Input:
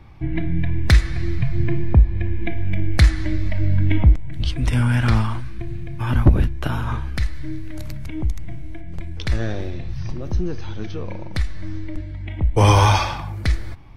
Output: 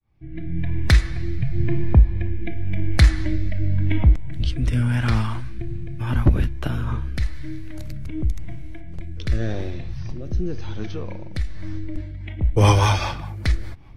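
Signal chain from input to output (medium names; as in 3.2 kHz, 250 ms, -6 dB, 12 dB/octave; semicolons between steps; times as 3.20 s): fade-in on the opening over 0.92 s; rotary cabinet horn 0.9 Hz, later 5 Hz, at 11.36 s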